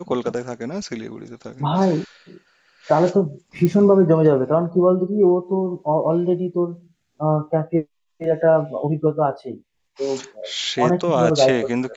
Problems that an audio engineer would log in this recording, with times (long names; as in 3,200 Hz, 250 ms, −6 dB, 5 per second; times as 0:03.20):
0:03.65: click −9 dBFS